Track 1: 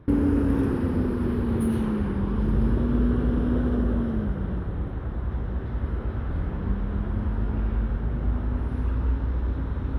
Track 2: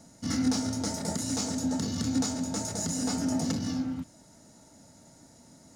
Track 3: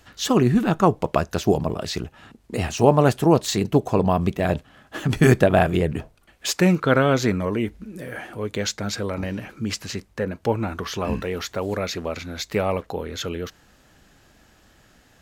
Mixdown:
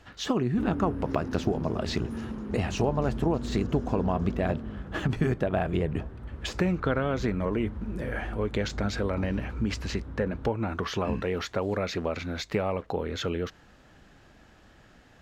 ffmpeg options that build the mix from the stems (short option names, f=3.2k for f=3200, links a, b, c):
-filter_complex "[0:a]adelay=500,volume=-11.5dB[a];[1:a]adynamicsmooth=sensitivity=3.5:basefreq=2.6k,adelay=800,volume=-16.5dB[b];[2:a]deesser=0.55,highshelf=f=5k:g=-9,acompressor=threshold=-24dB:ratio=6,volume=0.5dB[c];[a][b][c]amix=inputs=3:normalize=0,highshelf=f=10k:g=-10"